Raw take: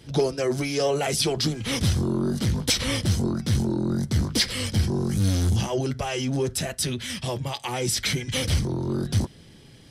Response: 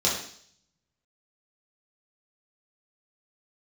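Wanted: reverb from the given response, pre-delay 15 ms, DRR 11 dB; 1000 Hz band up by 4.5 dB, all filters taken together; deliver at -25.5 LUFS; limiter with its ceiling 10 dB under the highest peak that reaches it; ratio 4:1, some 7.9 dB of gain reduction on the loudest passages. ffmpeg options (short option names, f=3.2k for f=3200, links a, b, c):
-filter_complex "[0:a]equalizer=f=1k:t=o:g=6,acompressor=threshold=-27dB:ratio=4,alimiter=level_in=1.5dB:limit=-24dB:level=0:latency=1,volume=-1.5dB,asplit=2[a][b];[1:a]atrim=start_sample=2205,adelay=15[c];[b][c]afir=irnorm=-1:irlink=0,volume=-23.5dB[d];[a][d]amix=inputs=2:normalize=0,volume=8dB"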